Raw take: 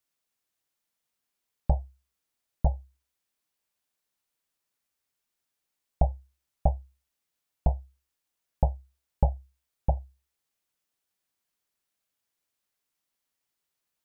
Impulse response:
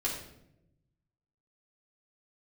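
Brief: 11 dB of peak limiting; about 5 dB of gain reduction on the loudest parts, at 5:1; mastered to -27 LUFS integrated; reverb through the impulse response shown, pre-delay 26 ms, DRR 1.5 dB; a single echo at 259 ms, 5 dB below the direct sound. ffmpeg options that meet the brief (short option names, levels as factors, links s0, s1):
-filter_complex "[0:a]acompressor=threshold=0.0562:ratio=5,alimiter=level_in=1.19:limit=0.0631:level=0:latency=1,volume=0.841,aecho=1:1:259:0.562,asplit=2[s0][s1];[1:a]atrim=start_sample=2205,adelay=26[s2];[s1][s2]afir=irnorm=-1:irlink=0,volume=0.473[s3];[s0][s3]amix=inputs=2:normalize=0,volume=4.47"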